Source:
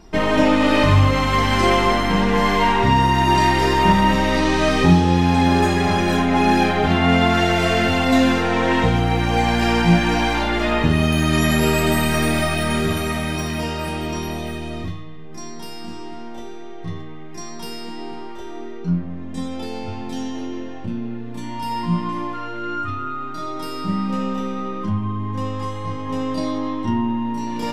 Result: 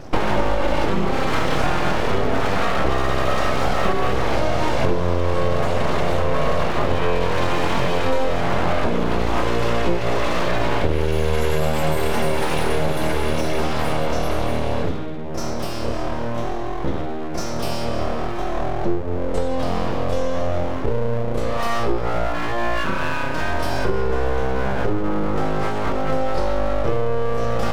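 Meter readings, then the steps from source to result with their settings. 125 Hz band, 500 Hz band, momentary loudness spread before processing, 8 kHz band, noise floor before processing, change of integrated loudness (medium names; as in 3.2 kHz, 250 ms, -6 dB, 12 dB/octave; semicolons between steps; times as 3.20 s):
-4.0 dB, +1.5 dB, 18 LU, -4.0 dB, -31 dBFS, -4.0 dB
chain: peaking EQ 290 Hz +12 dB 2.5 oct; compression, threshold -18 dBFS, peak gain reduction 17.5 dB; full-wave rectifier; trim +3.5 dB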